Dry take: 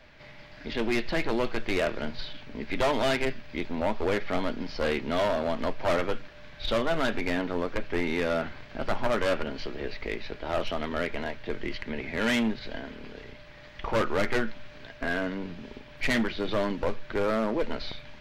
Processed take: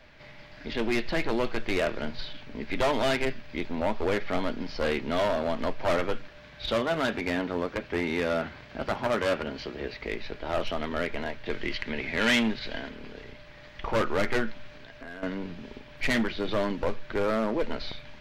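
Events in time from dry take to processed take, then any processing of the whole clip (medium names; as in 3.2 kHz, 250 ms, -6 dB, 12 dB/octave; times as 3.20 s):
6.38–10.13 s: high-pass 40 Hz
11.46–12.89 s: peaking EQ 3.4 kHz +5.5 dB 2.7 oct
14.75–15.23 s: compression 3:1, threshold -42 dBFS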